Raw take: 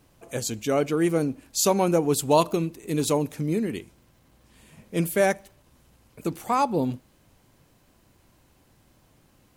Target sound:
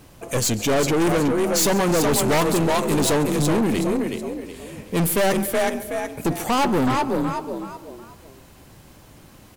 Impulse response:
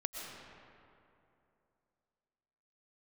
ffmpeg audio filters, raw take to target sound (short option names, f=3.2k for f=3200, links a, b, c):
-filter_complex "[0:a]asplit=5[a][b][c][d][e];[b]adelay=372,afreqshift=35,volume=-7dB[f];[c]adelay=744,afreqshift=70,volume=-17.2dB[g];[d]adelay=1116,afreqshift=105,volume=-27.3dB[h];[e]adelay=1488,afreqshift=140,volume=-37.5dB[i];[a][f][g][h][i]amix=inputs=5:normalize=0,aeval=exprs='0.501*sin(PI/2*2.82*val(0)/0.501)':c=same,asplit=2[j][k];[1:a]atrim=start_sample=2205,afade=t=out:st=0.45:d=0.01,atrim=end_sample=20286,adelay=139[l];[k][l]afir=irnorm=-1:irlink=0,volume=-18.5dB[m];[j][m]amix=inputs=2:normalize=0,aeval=exprs='(tanh(7.08*val(0)+0.35)-tanh(0.35))/7.08':c=same"